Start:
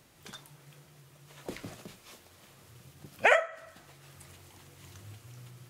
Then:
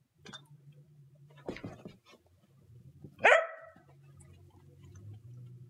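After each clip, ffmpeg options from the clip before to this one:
ffmpeg -i in.wav -af "afftdn=noise_reduction=21:noise_floor=-50" out.wav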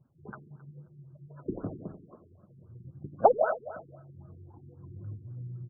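ffmpeg -i in.wav -af "aecho=1:1:89|178|267|356|445|534|623:0.299|0.176|0.104|0.0613|0.0362|0.0213|0.0126,afftfilt=real='re*lt(b*sr/1024,420*pow(1700/420,0.5+0.5*sin(2*PI*3.8*pts/sr)))':imag='im*lt(b*sr/1024,420*pow(1700/420,0.5+0.5*sin(2*PI*3.8*pts/sr)))':win_size=1024:overlap=0.75,volume=7.5dB" out.wav

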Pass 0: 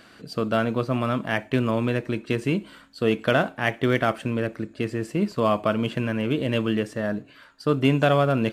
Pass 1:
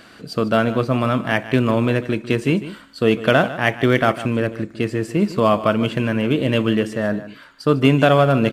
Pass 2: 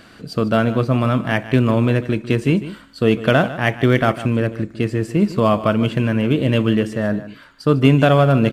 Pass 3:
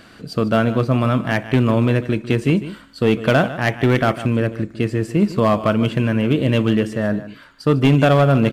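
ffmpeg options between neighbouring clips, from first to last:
ffmpeg -i in.wav -af "aecho=1:1:150:0.188,volume=5.5dB" out.wav
ffmpeg -i in.wav -af "lowshelf=frequency=170:gain=8,volume=-1dB" out.wav
ffmpeg -i in.wav -af "asoftclip=type=hard:threshold=-7.5dB" out.wav

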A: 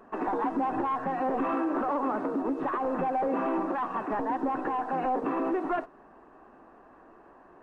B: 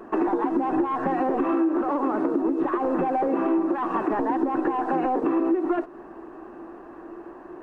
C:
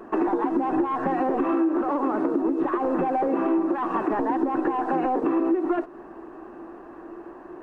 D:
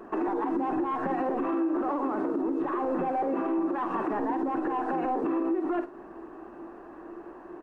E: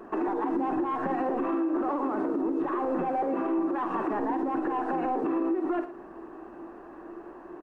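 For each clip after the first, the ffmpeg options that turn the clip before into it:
ffmpeg -i in.wav -af "equalizer=frequency=340:width_type=o:width=0.33:gain=13.5,acompressor=threshold=-29dB:ratio=5,volume=8dB" out.wav
ffmpeg -i in.wav -af anull out.wav
ffmpeg -i in.wav -filter_complex "[0:a]asplit=2[link_01][link_02];[link_02]adelay=48,volume=-10dB[link_03];[link_01][link_03]amix=inputs=2:normalize=0,alimiter=limit=-18dB:level=0:latency=1:release=48,volume=-3dB" out.wav
ffmpeg -i in.wav -af "aecho=1:1:113:0.158" out.wav

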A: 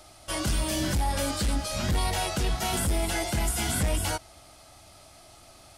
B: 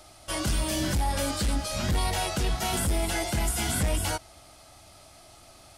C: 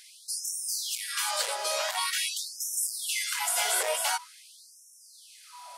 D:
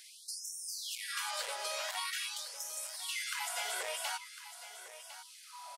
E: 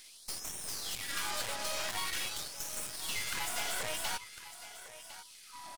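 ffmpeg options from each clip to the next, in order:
ffmpeg -i in.wav -af anull out.wav
ffmpeg -i in.wav -af "aeval=exprs='val(0)+0.00398*sin(2*PI*980*n/s)':channel_layout=same,afftfilt=real='re*gte(b*sr/1024,380*pow(5400/380,0.5+0.5*sin(2*PI*0.46*pts/sr)))':imag='im*gte(b*sr/1024,380*pow(5400/380,0.5+0.5*sin(2*PI*0.46*pts/sr)))':win_size=1024:overlap=0.75,volume=3.5dB" out.wav
ffmpeg -i in.wav -filter_complex "[0:a]acrossover=split=1500|3300|7400[link_01][link_02][link_03][link_04];[link_01]acompressor=threshold=-40dB:ratio=4[link_05];[link_02]acompressor=threshold=-39dB:ratio=4[link_06];[link_03]acompressor=threshold=-43dB:ratio=4[link_07];[link_04]acompressor=threshold=-45dB:ratio=4[link_08];[link_05][link_06][link_07][link_08]amix=inputs=4:normalize=0,aecho=1:1:1053:0.224,volume=-2.5dB" out.wav
ffmpeg -i in.wav -af "aeval=exprs='0.0668*(cos(1*acos(clip(val(0)/0.0668,-1,1)))-cos(1*PI/2))+0.0119*(cos(8*acos(clip(val(0)/0.0668,-1,1)))-cos(8*PI/2))':channel_layout=same" out.wav

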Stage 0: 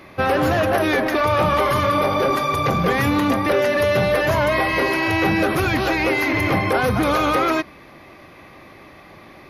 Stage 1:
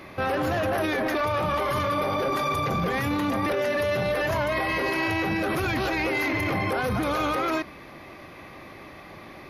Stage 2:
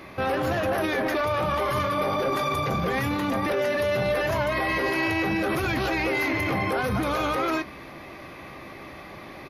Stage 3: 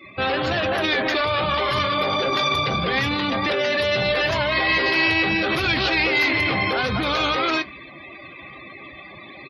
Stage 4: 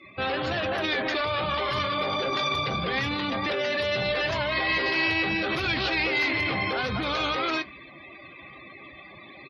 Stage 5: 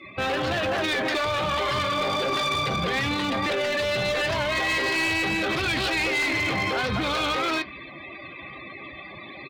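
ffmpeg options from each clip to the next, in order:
ffmpeg -i in.wav -af "alimiter=limit=-18.5dB:level=0:latency=1:release=13" out.wav
ffmpeg -i in.wav -filter_complex "[0:a]areverse,acompressor=mode=upward:threshold=-36dB:ratio=2.5,areverse,asplit=2[link_01][link_02];[link_02]adelay=15,volume=-11.5dB[link_03];[link_01][link_03]amix=inputs=2:normalize=0" out.wav
ffmpeg -i in.wav -af "equalizer=frequency=3800:width_type=o:width=1.7:gain=13,afftdn=noise_reduction=33:noise_floor=-36,volume=1dB" out.wav
ffmpeg -i in.wav -af "lowpass=8500,volume=-5.5dB" out.wav
ffmpeg -i in.wav -filter_complex "[0:a]asplit=2[link_01][link_02];[link_02]alimiter=limit=-24dB:level=0:latency=1:release=193,volume=2dB[link_03];[link_01][link_03]amix=inputs=2:normalize=0,volume=19.5dB,asoftclip=hard,volume=-19.5dB,volume=-1.5dB" out.wav

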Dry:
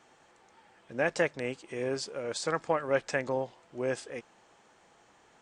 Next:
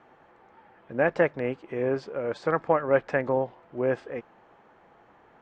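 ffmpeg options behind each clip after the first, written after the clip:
ffmpeg -i in.wav -af "lowpass=1700,volume=6dB" out.wav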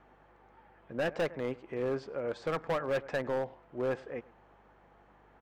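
ffmpeg -i in.wav -filter_complex "[0:a]asplit=2[link_01][link_02];[link_02]adelay=105,volume=-23dB,highshelf=frequency=4000:gain=-2.36[link_03];[link_01][link_03]amix=inputs=2:normalize=0,volume=21.5dB,asoftclip=hard,volume=-21.5dB,aeval=exprs='val(0)+0.000794*(sin(2*PI*50*n/s)+sin(2*PI*2*50*n/s)/2+sin(2*PI*3*50*n/s)/3+sin(2*PI*4*50*n/s)/4+sin(2*PI*5*50*n/s)/5)':channel_layout=same,volume=-5dB" out.wav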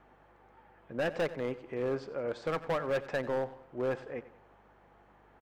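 ffmpeg -i in.wav -af "aecho=1:1:91|182|273|364:0.141|0.0607|0.0261|0.0112" out.wav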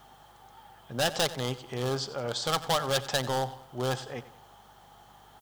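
ffmpeg -i in.wav -af "equalizer=frequency=125:width_type=o:width=0.33:gain=9,equalizer=frequency=315:width_type=o:width=0.33:gain=-6,equalizer=frequency=500:width_type=o:width=0.33:gain=-5,equalizer=frequency=800:width_type=o:width=0.33:gain=8,equalizer=frequency=1250:width_type=o:width=0.33:gain=4,equalizer=frequency=3150:width_type=o:width=0.33:gain=9,aexciter=amount=5.9:drive=7.9:freq=3600,volume=3dB" out.wav

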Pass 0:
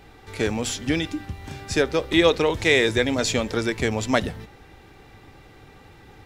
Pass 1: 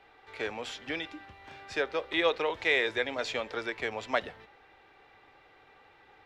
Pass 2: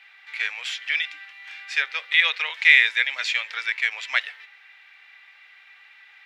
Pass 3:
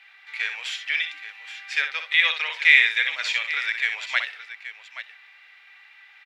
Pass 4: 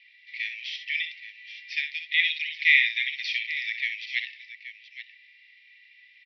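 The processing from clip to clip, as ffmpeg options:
ffmpeg -i in.wav -filter_complex "[0:a]acrossover=split=440 4000:gain=0.126 1 0.112[link_01][link_02][link_03];[link_01][link_02][link_03]amix=inputs=3:normalize=0,volume=-5.5dB" out.wav
ffmpeg -i in.wav -af "highpass=frequency=2100:width_type=q:width=2.2,volume=7.5dB" out.wav
ffmpeg -i in.wav -af "aecho=1:1:62|826:0.398|0.224,volume=-1dB" out.wav
ffmpeg -i in.wav -af "asuperpass=centerf=3300:order=20:qfactor=0.86,volume=-3.5dB" out.wav

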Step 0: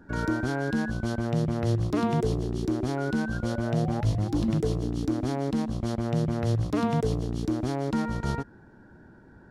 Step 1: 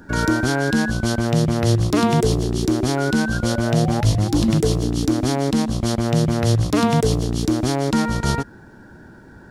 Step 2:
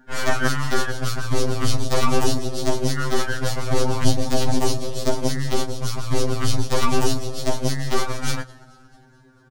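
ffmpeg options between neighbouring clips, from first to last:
ffmpeg -i in.wav -af "highshelf=frequency=2900:gain=10.5,volume=8dB" out.wav
ffmpeg -i in.wav -filter_complex "[0:a]asplit=8[link_01][link_02][link_03][link_04][link_05][link_06][link_07][link_08];[link_02]adelay=220,afreqshift=-50,volume=-17dB[link_09];[link_03]adelay=440,afreqshift=-100,volume=-20.7dB[link_10];[link_04]adelay=660,afreqshift=-150,volume=-24.5dB[link_11];[link_05]adelay=880,afreqshift=-200,volume=-28.2dB[link_12];[link_06]adelay=1100,afreqshift=-250,volume=-32dB[link_13];[link_07]adelay=1320,afreqshift=-300,volume=-35.7dB[link_14];[link_08]adelay=1540,afreqshift=-350,volume=-39.5dB[link_15];[link_01][link_09][link_10][link_11][link_12][link_13][link_14][link_15]amix=inputs=8:normalize=0,aeval=exprs='0.596*(cos(1*acos(clip(val(0)/0.596,-1,1)))-cos(1*PI/2))+0.299*(cos(4*acos(clip(val(0)/0.596,-1,1)))-cos(4*PI/2))+0.0473*(cos(7*acos(clip(val(0)/0.596,-1,1)))-cos(7*PI/2))':channel_layout=same,afftfilt=real='re*2.45*eq(mod(b,6),0)':imag='im*2.45*eq(mod(b,6),0)':win_size=2048:overlap=0.75,volume=-1.5dB" out.wav

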